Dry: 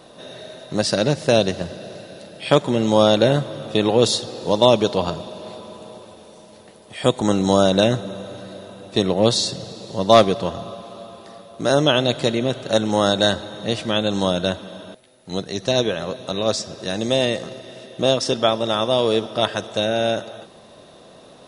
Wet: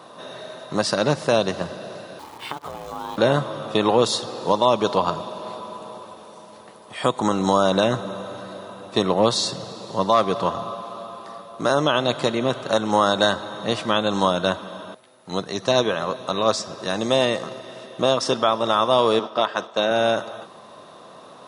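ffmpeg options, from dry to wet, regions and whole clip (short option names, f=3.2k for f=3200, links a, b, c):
-filter_complex "[0:a]asettb=1/sr,asplit=3[a][b][c];[a]atrim=end=2.194[d];[b]atrim=start=2.19:end=3.18,asetpts=PTS-STARTPTS,afade=t=in:d=0.004:c=qsin,afade=t=out:st=0.986:d=0.004:c=qsin,acompressor=threshold=-26dB:ratio=16:attack=3.2:release=140:knee=1:detection=peak,aeval=exprs='val(0)*sin(2*PI*280*n/s)':c=same,acrusher=bits=8:dc=4:mix=0:aa=0.000001[e];[c]atrim=start=3.176[f];[d][e]acrossfade=d=0.004:c1=hsin:c2=qsin[g];[g][f]acrossfade=d=0.004:c1=qsin:c2=hsin,asettb=1/sr,asplit=3[h][i][j];[h]atrim=end=19.194[k];[i]atrim=start=19.19:end=19.91,asetpts=PTS-STARTPTS,afade=t=in:d=0.004:c=qsin,afade=t=out:st=0.716:d=0.004:c=qsin,agate=range=-33dB:threshold=-30dB:ratio=3:release=100:detection=peak,highpass=190,lowpass=6.3k[l];[j]atrim=start=19.906[m];[k][l]acrossfade=d=0.004:c1=hsin:c2=qsin[n];[n][m]acrossfade=d=0.004:c1=qsin:c2=hsin,highpass=110,equalizer=f=1.1k:w=1.7:g=12,alimiter=limit=-4.5dB:level=0:latency=1:release=189,volume=-1.5dB"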